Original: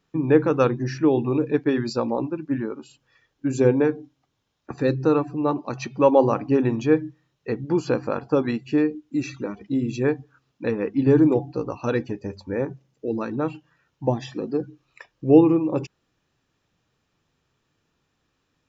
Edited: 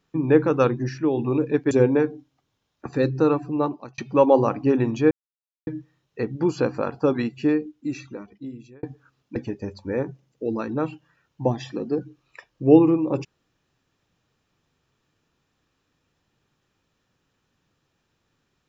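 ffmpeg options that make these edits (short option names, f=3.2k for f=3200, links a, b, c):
-filter_complex "[0:a]asplit=8[a][b][c][d][e][f][g][h];[a]atrim=end=0.892[i];[b]atrim=start=0.888:end=1.192,asetpts=PTS-STARTPTS,volume=-3.5dB[j];[c]atrim=start=1.188:end=1.712[k];[d]atrim=start=3.558:end=5.83,asetpts=PTS-STARTPTS,afade=t=out:st=1.892:d=0.38[l];[e]atrim=start=5.83:end=6.96,asetpts=PTS-STARTPTS,afade=t=in:d=0.004:c=hsin,afade=t=out:st=1.126:d=0.004:c=hsin,apad=pad_dur=0.56[m];[f]atrim=start=6.96:end=10.12,asetpts=PTS-STARTPTS,afade=t=in:d=0.004:c=hsin,afade=t=out:st=1.75:d=1.41[n];[g]atrim=start=10.12:end=10.652,asetpts=PTS-STARTPTS,afade=t=in:d=0.004:c=hsin[o];[h]atrim=start=11.978[p];[i][j]acrossfade=d=0.004:c1=hsin:c2=hsin[q];[q][k]acrossfade=d=0.004:c1=hsin:c2=hsin[r];[l][m][n][o]concat=n=4:v=0:a=1[s];[r][s]acrossfade=d=0.004:c1=hsin:c2=hsin[t];[t][p]acrossfade=d=0.004:c1=hsin:c2=hsin"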